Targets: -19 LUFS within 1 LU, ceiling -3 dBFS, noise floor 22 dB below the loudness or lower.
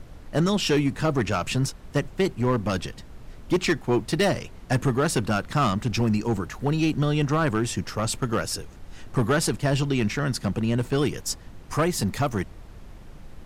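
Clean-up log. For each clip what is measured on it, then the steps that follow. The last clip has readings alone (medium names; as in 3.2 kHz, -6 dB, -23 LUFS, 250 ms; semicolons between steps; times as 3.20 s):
clipped samples 1.4%; clipping level -15.5 dBFS; noise floor -45 dBFS; noise floor target -47 dBFS; loudness -25.0 LUFS; peak level -15.5 dBFS; loudness target -19.0 LUFS
-> clip repair -15.5 dBFS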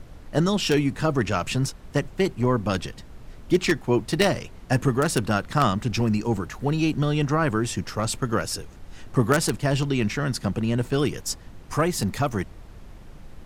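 clipped samples 0.0%; noise floor -45 dBFS; noise floor target -47 dBFS
-> noise print and reduce 6 dB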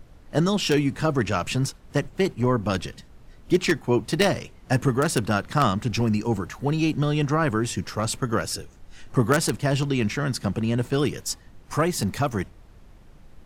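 noise floor -50 dBFS; loudness -24.5 LUFS; peak level -6.5 dBFS; loudness target -19.0 LUFS
-> trim +5.5 dB; peak limiter -3 dBFS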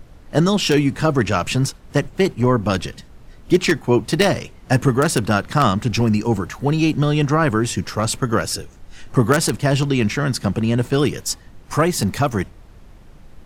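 loudness -19.0 LUFS; peak level -3.0 dBFS; noise floor -44 dBFS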